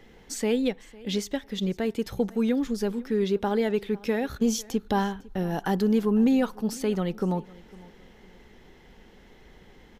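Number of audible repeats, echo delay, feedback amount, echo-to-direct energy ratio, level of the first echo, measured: 2, 0.503 s, 25%, -21.5 dB, -22.0 dB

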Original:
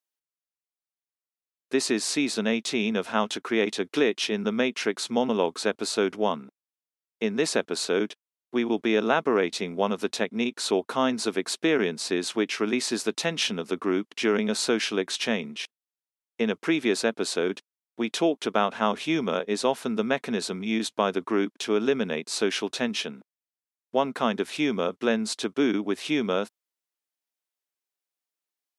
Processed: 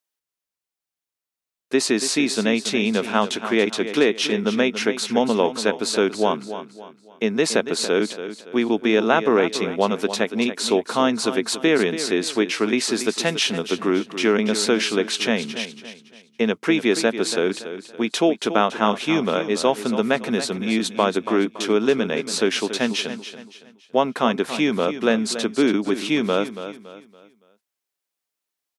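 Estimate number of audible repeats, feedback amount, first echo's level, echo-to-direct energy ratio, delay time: 3, 36%, -11.5 dB, -11.0 dB, 0.282 s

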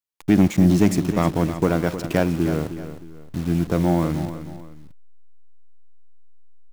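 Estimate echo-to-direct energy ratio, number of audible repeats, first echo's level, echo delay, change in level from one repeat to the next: -11.0 dB, 2, -11.5 dB, 0.31 s, -9.0 dB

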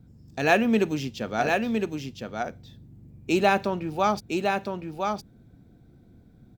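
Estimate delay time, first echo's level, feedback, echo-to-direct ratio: 1.011 s, -4.5 dB, no steady repeat, -4.5 dB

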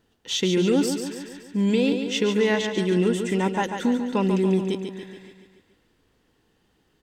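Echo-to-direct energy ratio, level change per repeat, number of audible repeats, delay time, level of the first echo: -5.5 dB, -5.0 dB, 6, 0.142 s, -7.0 dB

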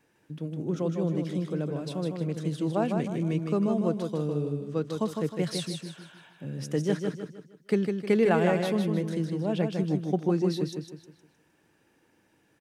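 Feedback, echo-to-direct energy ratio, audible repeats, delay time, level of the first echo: 38%, -4.5 dB, 4, 0.155 s, -5.0 dB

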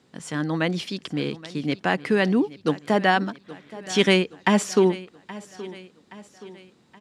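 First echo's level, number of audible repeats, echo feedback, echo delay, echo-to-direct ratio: -18.0 dB, 3, 49%, 0.823 s, -17.0 dB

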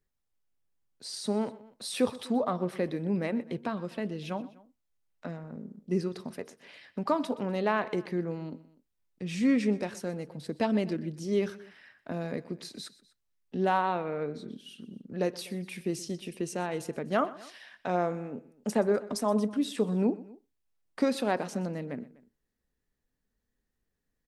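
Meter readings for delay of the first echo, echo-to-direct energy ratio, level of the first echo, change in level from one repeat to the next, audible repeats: 0.124 s, -17.5 dB, -19.0 dB, -4.5 dB, 2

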